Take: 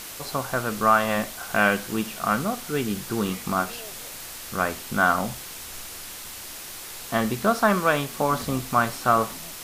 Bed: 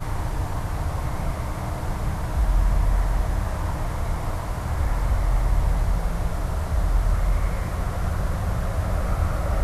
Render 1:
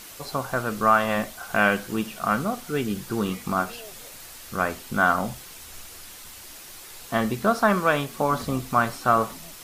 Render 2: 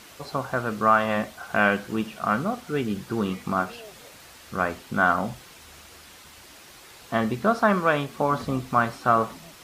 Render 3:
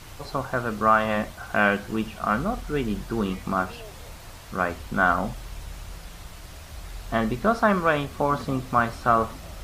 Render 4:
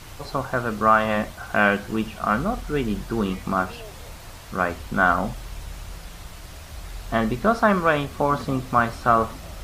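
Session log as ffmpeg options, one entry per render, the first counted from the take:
-af "afftdn=nr=6:nf=-39"
-af "highpass=52,highshelf=f=6.3k:g=-12"
-filter_complex "[1:a]volume=-17.5dB[a];[0:a][a]amix=inputs=2:normalize=0"
-af "volume=2dB"

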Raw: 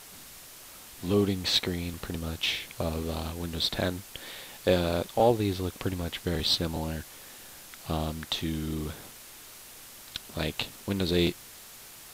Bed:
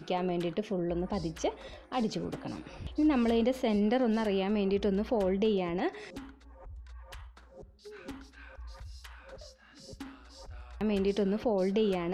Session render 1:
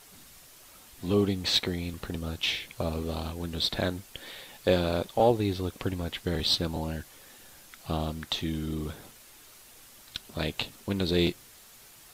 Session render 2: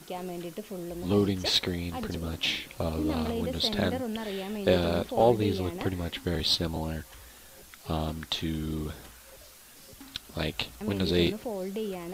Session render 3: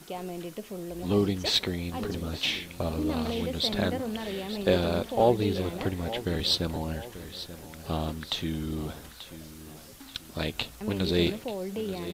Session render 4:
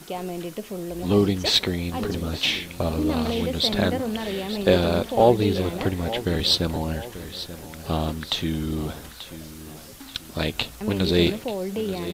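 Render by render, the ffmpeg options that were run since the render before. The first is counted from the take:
-af "afftdn=nr=6:nf=-48"
-filter_complex "[1:a]volume=-5.5dB[a];[0:a][a]amix=inputs=2:normalize=0"
-af "aecho=1:1:886|1772|2658|3544:0.2|0.0798|0.0319|0.0128"
-af "volume=5.5dB"

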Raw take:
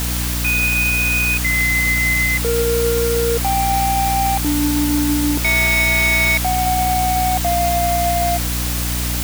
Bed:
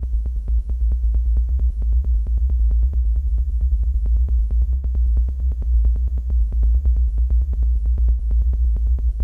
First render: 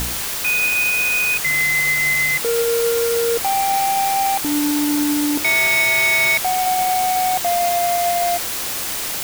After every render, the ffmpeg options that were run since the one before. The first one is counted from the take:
-af "bandreject=f=60:t=h:w=4,bandreject=f=120:t=h:w=4,bandreject=f=180:t=h:w=4,bandreject=f=240:t=h:w=4,bandreject=f=300:t=h:w=4"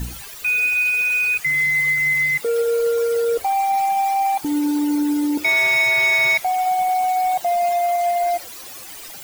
-af "afftdn=nr=16:nf=-25"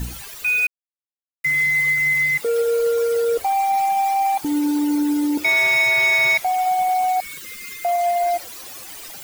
-filter_complex "[0:a]asettb=1/sr,asplit=3[a][b][c];[a]atrim=end=7.204[d];[b]atrim=start=7.2:end=7.85,asetpts=PTS-STARTPTS,afade=t=in:d=0.004:c=qsin,afade=t=out:st=0.646:d=0.004:c=qsin,asuperstop=centerf=740:order=8:qfactor=1.1[e];[c]atrim=start=7.846[f];[d][e]acrossfade=d=0.004:c1=hsin:c2=qsin[g];[g][f]acrossfade=d=0.004:c1=qsin:c2=hsin,asplit=3[h][i][j];[h]atrim=end=0.67,asetpts=PTS-STARTPTS,afade=t=out:st=0.666:d=0.004:c=hsin[k];[i]atrim=start=0.67:end=1.44,asetpts=PTS-STARTPTS,volume=0[l];[j]atrim=start=1.44,asetpts=PTS-STARTPTS,afade=t=in:d=0.004:c=hsin[m];[k][l][m]concat=n=3:v=0:a=1"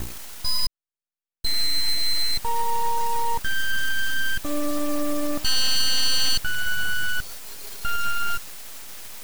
-filter_complex "[0:a]acrossover=split=340|7300[a][b][c];[a]acrusher=bits=4:dc=4:mix=0:aa=0.000001[d];[d][b][c]amix=inputs=3:normalize=0,aeval=exprs='abs(val(0))':c=same"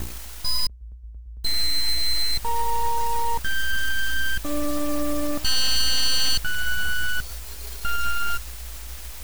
-filter_complex "[1:a]volume=-21.5dB[a];[0:a][a]amix=inputs=2:normalize=0"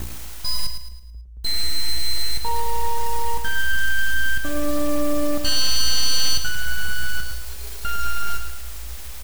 -filter_complex "[0:a]asplit=2[a][b];[b]adelay=32,volume=-13dB[c];[a][c]amix=inputs=2:normalize=0,asplit=2[d][e];[e]aecho=0:1:109|218|327|436|545:0.398|0.167|0.0702|0.0295|0.0124[f];[d][f]amix=inputs=2:normalize=0"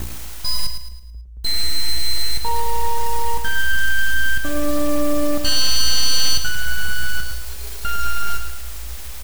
-af "volume=2.5dB"

